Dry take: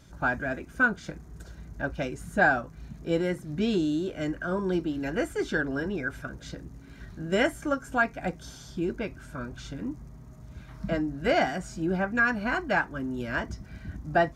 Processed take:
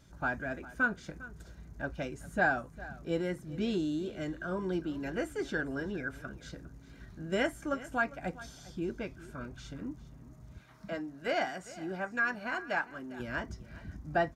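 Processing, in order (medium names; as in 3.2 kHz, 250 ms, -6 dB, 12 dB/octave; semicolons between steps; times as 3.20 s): 10.58–13.20 s: high-pass 410 Hz 6 dB/octave; delay 403 ms -18 dB; trim -6 dB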